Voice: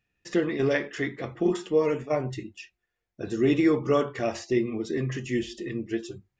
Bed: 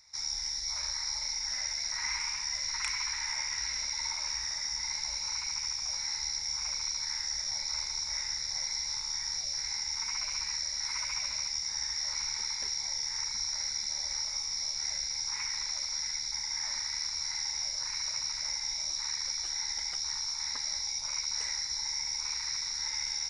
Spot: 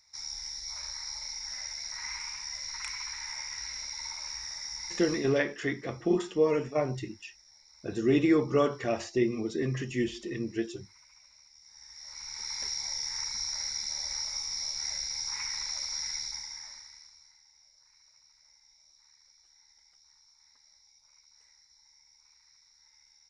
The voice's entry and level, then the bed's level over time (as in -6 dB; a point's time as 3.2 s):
4.65 s, -2.0 dB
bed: 5.13 s -4.5 dB
5.46 s -24.5 dB
11.53 s -24.5 dB
12.58 s -0.5 dB
16.22 s -0.5 dB
17.42 s -28 dB